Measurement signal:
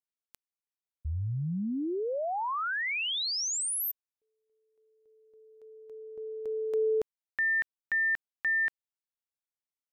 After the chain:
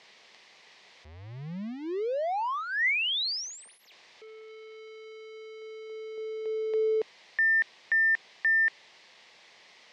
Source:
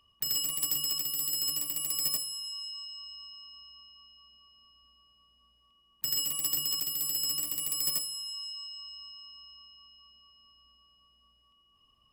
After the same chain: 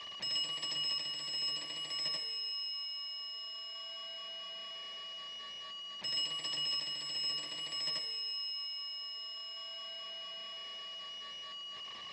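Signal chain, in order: jump at every zero crossing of -41 dBFS; cabinet simulation 250–4800 Hz, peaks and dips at 280 Hz -10 dB, 1.4 kHz -9 dB, 2 kHz +6 dB; trim +1.5 dB

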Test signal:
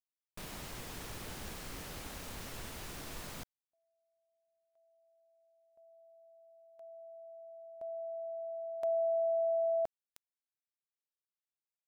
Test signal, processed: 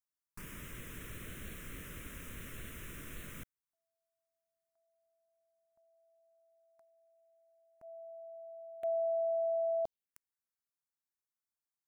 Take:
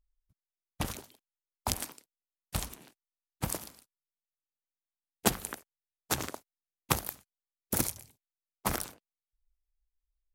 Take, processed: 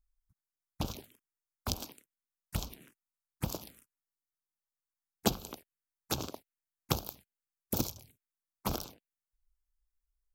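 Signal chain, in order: touch-sensitive phaser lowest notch 510 Hz, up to 1.9 kHz, full sweep at -32 dBFS

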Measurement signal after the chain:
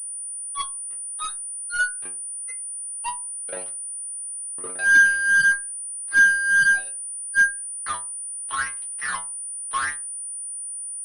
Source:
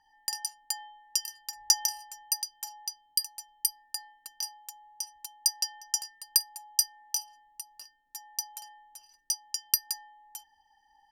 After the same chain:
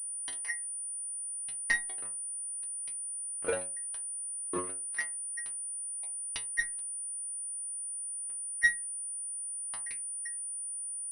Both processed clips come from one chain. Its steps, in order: split-band scrambler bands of 1 kHz; wind noise 430 Hz -47 dBFS; high-pass 67 Hz 24 dB/octave; peaking EQ 1.7 kHz +11 dB 0.62 oct; compression 1.5:1, threshold -28 dBFS; wah-wah 0.82 Hz 370–3100 Hz, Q 14; fuzz box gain 46 dB, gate -49 dBFS; inharmonic resonator 89 Hz, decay 0.34 s, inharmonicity 0.002; class-D stage that switches slowly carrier 9.4 kHz; trim +4 dB

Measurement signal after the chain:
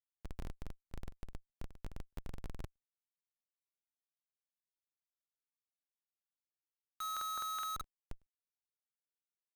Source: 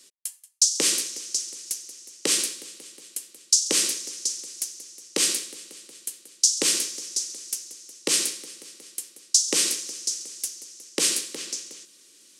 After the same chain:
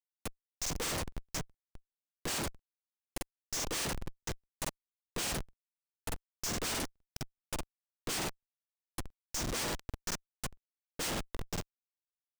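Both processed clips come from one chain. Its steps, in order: harmonic-percussive split harmonic -7 dB; Schmitt trigger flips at -25.5 dBFS; crackling interface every 0.21 s, samples 2048, repeat, from 0.61 s; trim -5 dB

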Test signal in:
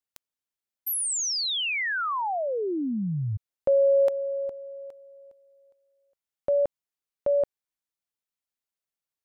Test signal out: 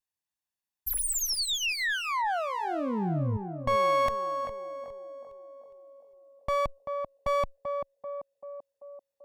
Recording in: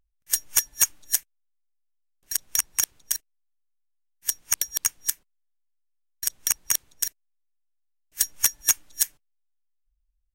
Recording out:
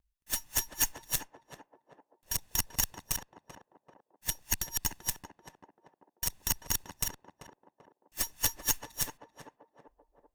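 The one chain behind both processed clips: comb filter that takes the minimum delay 1.1 ms; peak limiter -12.5 dBFS; Chebyshev shaper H 2 -15 dB, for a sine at -12.5 dBFS; on a send: band-passed feedback delay 388 ms, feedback 62%, band-pass 500 Hz, level -4 dB

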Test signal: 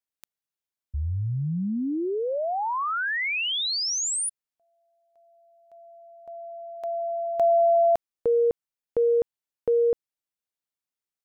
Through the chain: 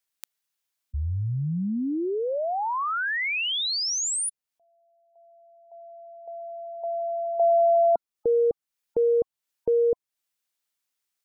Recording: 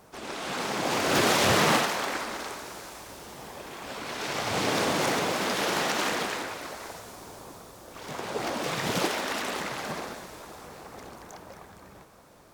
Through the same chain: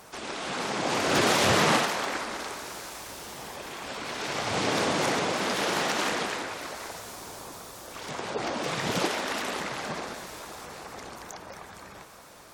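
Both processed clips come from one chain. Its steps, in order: spectral gate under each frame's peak -30 dB strong; tape noise reduction on one side only encoder only

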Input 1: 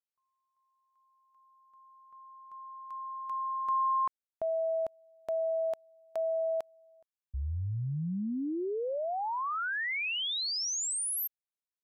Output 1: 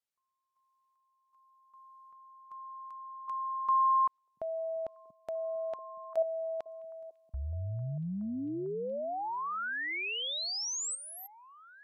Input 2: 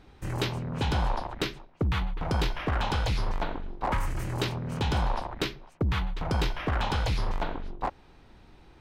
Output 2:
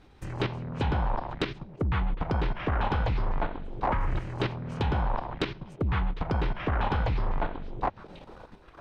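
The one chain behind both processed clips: low-pass that closes with the level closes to 2 kHz, closed at -24 dBFS; repeats whose band climbs or falls 685 ms, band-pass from 170 Hz, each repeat 1.4 oct, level -11.5 dB; level held to a coarse grid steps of 10 dB; trim +4.5 dB

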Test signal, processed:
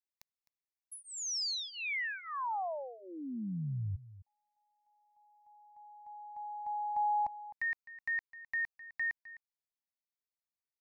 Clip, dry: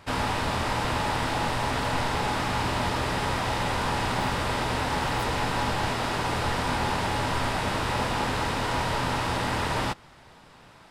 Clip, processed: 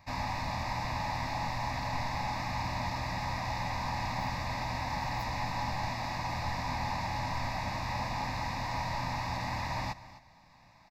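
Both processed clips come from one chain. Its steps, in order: static phaser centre 2.1 kHz, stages 8; on a send: delay 258 ms -16.5 dB; on the sum: trim -5.5 dB

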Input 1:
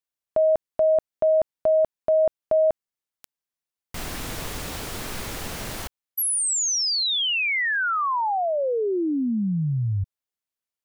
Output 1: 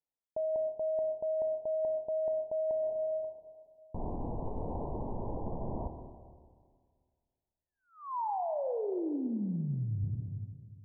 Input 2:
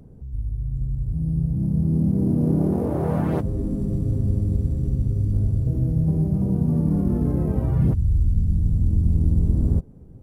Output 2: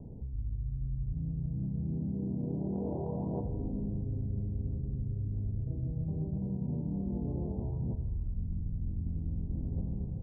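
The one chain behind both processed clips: steep low-pass 990 Hz 96 dB/octave; Schroeder reverb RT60 1.9 s, combs from 27 ms, DRR 7 dB; reverse; compression 12:1, threshold -31 dBFS; reverse

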